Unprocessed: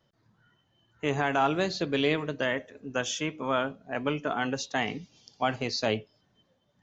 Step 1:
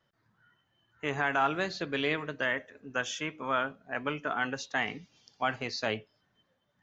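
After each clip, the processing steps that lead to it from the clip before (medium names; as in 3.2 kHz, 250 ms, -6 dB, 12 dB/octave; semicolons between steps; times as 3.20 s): peaking EQ 1.6 kHz +8.5 dB 1.5 oct; trim -6.5 dB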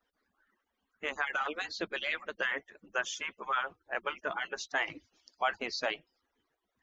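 harmonic-percussive separation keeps percussive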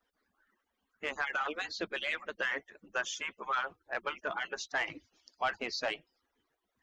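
saturation -21 dBFS, distortion -19 dB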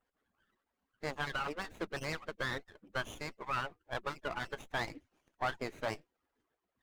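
vibrato 5.8 Hz 44 cents; Butterworth band-stop 5.1 kHz, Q 1.9; sliding maximum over 9 samples; trim -2 dB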